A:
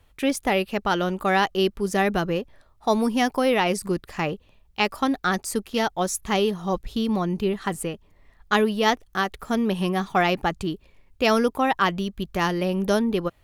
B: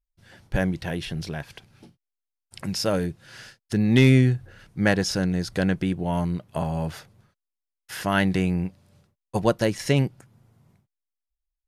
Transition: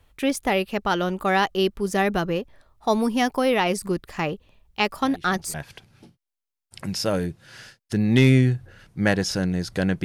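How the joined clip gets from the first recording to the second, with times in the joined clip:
A
4.96 add B from 0.76 s 0.58 s -14 dB
5.54 switch to B from 1.34 s

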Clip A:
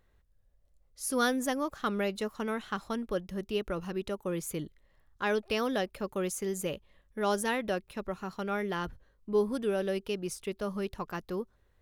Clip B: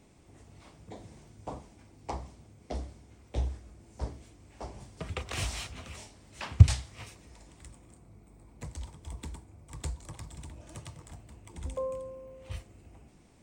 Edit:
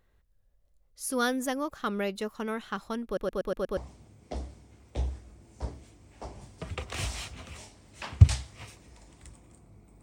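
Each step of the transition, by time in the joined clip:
clip A
3.05 stutter in place 0.12 s, 6 plays
3.77 switch to clip B from 2.16 s

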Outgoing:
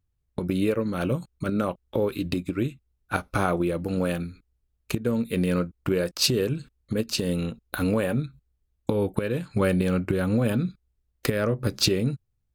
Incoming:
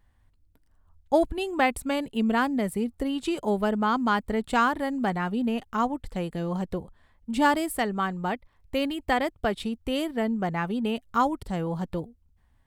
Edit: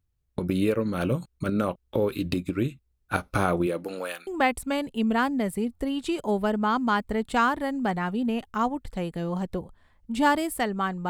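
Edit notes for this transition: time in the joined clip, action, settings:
outgoing
3.66–4.27 HPF 180 Hz -> 1400 Hz
4.27 switch to incoming from 1.46 s

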